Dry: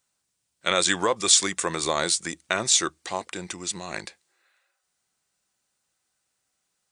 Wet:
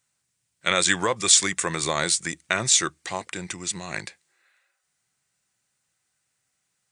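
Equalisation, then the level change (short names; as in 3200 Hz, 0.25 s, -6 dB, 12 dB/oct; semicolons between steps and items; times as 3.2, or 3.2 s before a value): ten-band EQ 125 Hz +10 dB, 2000 Hz +6 dB, 8000 Hz +4 dB; -2.0 dB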